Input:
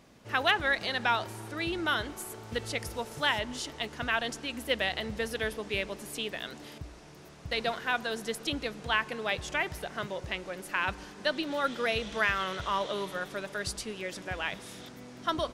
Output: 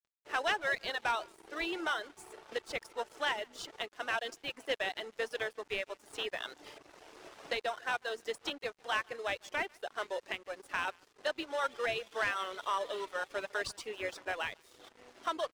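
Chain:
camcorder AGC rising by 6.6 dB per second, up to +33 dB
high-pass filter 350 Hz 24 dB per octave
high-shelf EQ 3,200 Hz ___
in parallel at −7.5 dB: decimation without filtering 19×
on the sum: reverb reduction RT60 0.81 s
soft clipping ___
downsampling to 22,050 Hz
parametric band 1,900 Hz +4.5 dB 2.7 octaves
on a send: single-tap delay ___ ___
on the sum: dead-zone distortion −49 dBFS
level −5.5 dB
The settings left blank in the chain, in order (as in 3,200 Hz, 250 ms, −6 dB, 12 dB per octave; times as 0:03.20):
−5 dB, −20.5 dBFS, 148 ms, −22.5 dB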